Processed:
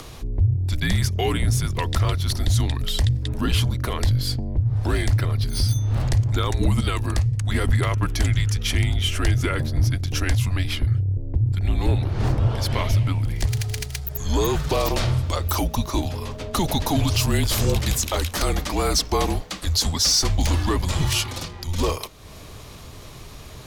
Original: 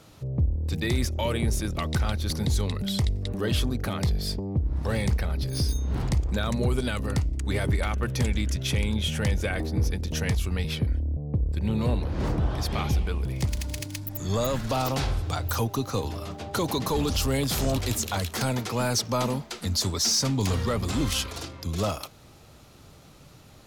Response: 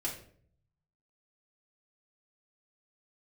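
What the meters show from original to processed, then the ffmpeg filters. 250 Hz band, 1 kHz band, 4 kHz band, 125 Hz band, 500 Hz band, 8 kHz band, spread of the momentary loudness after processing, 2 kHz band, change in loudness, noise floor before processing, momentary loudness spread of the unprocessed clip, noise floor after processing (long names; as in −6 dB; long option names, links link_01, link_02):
+1.5 dB, +4.0 dB, +5.0 dB, +6.0 dB, +2.0 dB, +4.5 dB, 7 LU, +4.0 dB, +4.5 dB, −51 dBFS, 4 LU, −40 dBFS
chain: -af "acompressor=mode=upward:threshold=-36dB:ratio=2.5,afreqshift=-170,volume=5dB"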